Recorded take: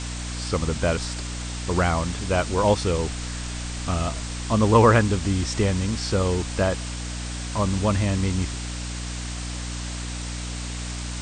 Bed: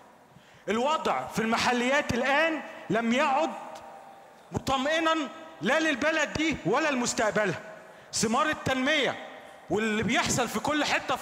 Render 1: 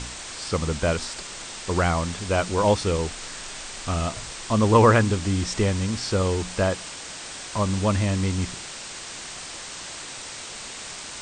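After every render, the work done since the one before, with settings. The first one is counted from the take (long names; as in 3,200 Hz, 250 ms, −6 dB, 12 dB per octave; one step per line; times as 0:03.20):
hum removal 60 Hz, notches 5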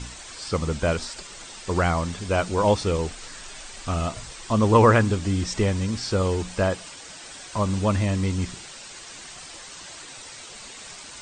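broadband denoise 8 dB, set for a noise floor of −38 dBFS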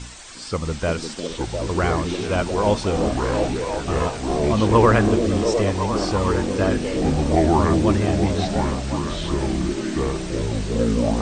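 delay with pitch and tempo change per echo 649 ms, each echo −6 semitones, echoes 3
echo through a band-pass that steps 352 ms, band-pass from 290 Hz, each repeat 0.7 octaves, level 0 dB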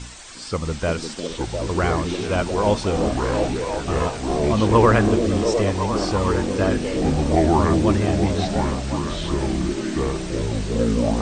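no processing that can be heard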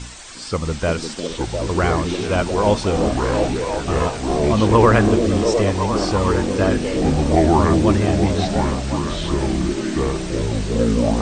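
level +2.5 dB
brickwall limiter −2 dBFS, peak gain reduction 2 dB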